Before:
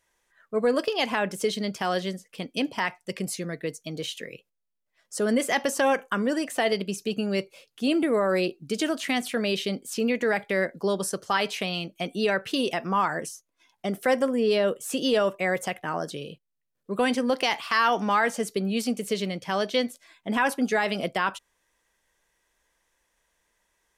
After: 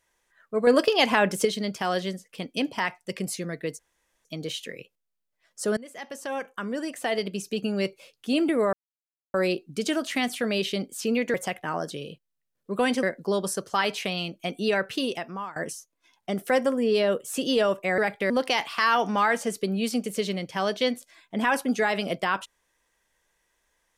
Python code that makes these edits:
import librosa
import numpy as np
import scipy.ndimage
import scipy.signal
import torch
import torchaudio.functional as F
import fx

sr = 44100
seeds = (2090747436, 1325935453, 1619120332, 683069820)

y = fx.edit(x, sr, fx.clip_gain(start_s=0.67, length_s=0.78, db=5.0),
    fx.insert_room_tone(at_s=3.79, length_s=0.46),
    fx.fade_in_from(start_s=5.31, length_s=1.91, floor_db=-23.0),
    fx.insert_silence(at_s=8.27, length_s=0.61),
    fx.swap(start_s=10.27, length_s=0.32, other_s=15.54, other_length_s=1.69),
    fx.fade_out_to(start_s=12.45, length_s=0.67, floor_db=-19.5), tone=tone)